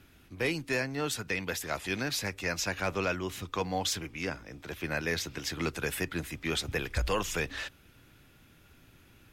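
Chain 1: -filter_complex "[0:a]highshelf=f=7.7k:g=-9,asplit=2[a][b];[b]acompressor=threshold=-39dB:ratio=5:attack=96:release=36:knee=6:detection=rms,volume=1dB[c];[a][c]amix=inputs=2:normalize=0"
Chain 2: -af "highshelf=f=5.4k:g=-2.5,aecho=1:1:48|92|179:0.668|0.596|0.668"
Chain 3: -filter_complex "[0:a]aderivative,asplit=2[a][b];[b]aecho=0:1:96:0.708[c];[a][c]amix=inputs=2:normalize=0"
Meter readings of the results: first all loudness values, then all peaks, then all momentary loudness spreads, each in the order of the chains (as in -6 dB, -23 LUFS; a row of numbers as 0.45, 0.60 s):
-29.0, -30.0, -38.5 LUFS; -15.0, -15.5, -21.5 dBFS; 4, 6, 10 LU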